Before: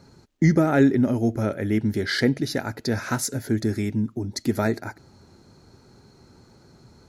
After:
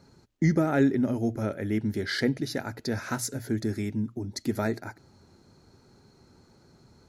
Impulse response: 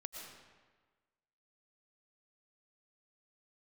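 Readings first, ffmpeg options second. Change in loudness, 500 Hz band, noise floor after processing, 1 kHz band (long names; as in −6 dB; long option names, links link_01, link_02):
−5.0 dB, −5.0 dB, −60 dBFS, −5.0 dB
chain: -af "bandreject=frequency=60:width_type=h:width=6,bandreject=frequency=120:width_type=h:width=6,volume=-5dB"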